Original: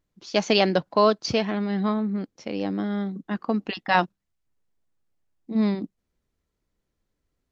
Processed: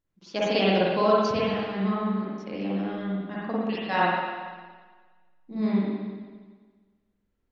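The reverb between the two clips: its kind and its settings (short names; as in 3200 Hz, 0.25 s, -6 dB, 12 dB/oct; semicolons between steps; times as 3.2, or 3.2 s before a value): spring tank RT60 1.5 s, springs 46/57 ms, chirp 75 ms, DRR -7.5 dB; gain -9 dB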